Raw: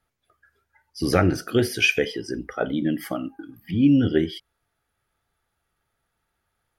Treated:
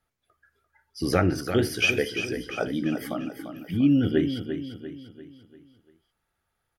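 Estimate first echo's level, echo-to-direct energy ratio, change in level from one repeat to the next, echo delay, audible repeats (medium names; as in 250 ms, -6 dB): -9.0 dB, -8.0 dB, -7.0 dB, 345 ms, 4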